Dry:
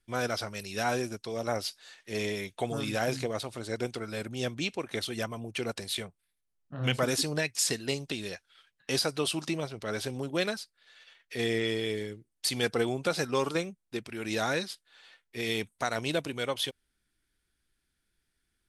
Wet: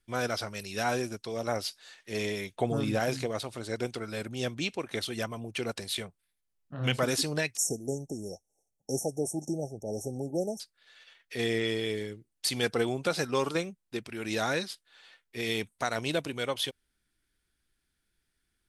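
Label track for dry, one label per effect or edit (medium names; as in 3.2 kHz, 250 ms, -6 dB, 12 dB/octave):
2.560000	3.000000	tilt shelf lows +5 dB, about 1.1 kHz
7.570000	10.600000	brick-wall FIR band-stop 870–5400 Hz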